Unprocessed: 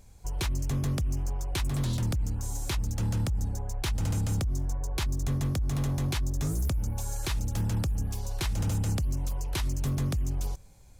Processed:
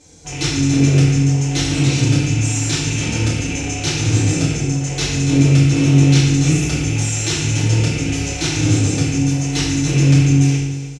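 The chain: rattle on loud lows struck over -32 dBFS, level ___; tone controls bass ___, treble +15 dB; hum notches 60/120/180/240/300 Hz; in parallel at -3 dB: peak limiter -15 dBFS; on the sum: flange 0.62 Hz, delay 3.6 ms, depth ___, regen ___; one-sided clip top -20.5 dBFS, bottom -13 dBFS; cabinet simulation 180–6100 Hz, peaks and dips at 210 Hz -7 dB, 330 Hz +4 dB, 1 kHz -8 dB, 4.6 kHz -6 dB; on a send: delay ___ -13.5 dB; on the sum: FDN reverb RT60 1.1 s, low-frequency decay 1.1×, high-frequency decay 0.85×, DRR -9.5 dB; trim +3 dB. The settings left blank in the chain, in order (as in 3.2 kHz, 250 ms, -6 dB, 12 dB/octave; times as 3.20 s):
-28 dBFS, +9 dB, 5.4 ms, -33%, 303 ms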